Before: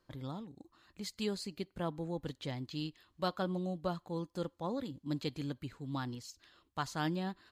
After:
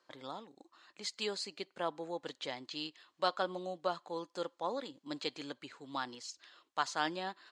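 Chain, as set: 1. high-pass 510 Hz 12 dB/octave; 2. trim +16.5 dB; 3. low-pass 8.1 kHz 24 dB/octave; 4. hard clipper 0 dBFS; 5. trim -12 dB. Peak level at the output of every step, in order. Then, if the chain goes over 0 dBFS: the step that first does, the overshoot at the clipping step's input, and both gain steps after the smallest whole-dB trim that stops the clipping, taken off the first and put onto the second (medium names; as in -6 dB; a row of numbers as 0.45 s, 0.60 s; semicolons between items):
-21.5 dBFS, -5.0 dBFS, -5.0 dBFS, -5.0 dBFS, -17.0 dBFS; nothing clips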